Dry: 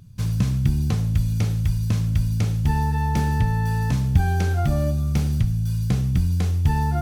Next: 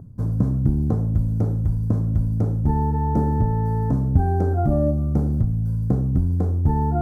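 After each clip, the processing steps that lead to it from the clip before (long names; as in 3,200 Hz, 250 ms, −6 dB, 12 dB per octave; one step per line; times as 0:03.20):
drawn EQ curve 180 Hz 0 dB, 260 Hz +9 dB, 650 Hz +5 dB, 1,400 Hz −6 dB, 2,600 Hz −29 dB, 10,000 Hz −16 dB
reversed playback
upward compression, threshold −21 dBFS
reversed playback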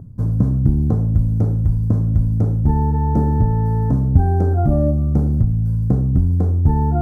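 low-shelf EQ 200 Hz +4.5 dB
level +1 dB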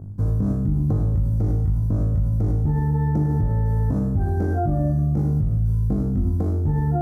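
flutter between parallel walls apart 3.4 metres, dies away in 0.6 s
brickwall limiter −11 dBFS, peak gain reduction 9 dB
level −3 dB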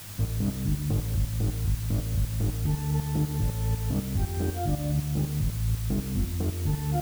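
shaped tremolo saw up 4 Hz, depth 75%
background noise white −40 dBFS
level −3.5 dB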